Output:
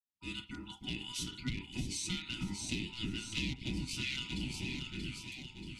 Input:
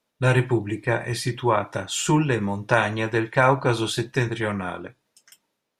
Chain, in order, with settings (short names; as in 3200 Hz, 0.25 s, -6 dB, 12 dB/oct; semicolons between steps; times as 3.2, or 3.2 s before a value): opening faded in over 0.74 s; bell 3400 Hz -7.5 dB 2.5 oct; in parallel at -1.5 dB: level quantiser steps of 19 dB; on the sum: HPF 57 Hz 24 dB/oct; ring modulator 1100 Hz; hard clip -14 dBFS, distortion -11 dB; inverse Chebyshev band-stop 490–1700 Hz, stop band 40 dB; air absorption 56 m; echo with dull and thin repeats by turns 0.316 s, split 1400 Hz, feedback 71%, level -3 dB; compressor 5:1, threshold -36 dBFS, peak gain reduction 11 dB; LFO bell 1.1 Hz 730–1500 Hz +16 dB; gain +1 dB